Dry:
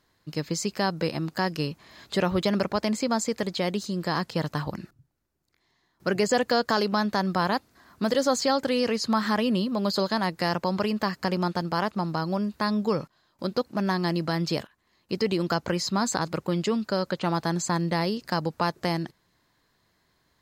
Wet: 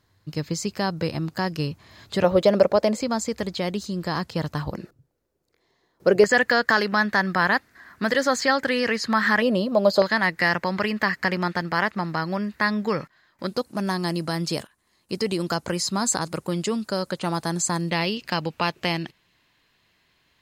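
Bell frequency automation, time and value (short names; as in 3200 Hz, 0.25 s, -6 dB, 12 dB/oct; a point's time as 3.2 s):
bell +14 dB
94 Hz
from 2.24 s 550 Hz
from 3.01 s 74 Hz
from 4.71 s 480 Hz
from 6.24 s 1800 Hz
from 9.42 s 620 Hz
from 10.02 s 1900 Hz
from 13.47 s 9500 Hz
from 17.9 s 2700 Hz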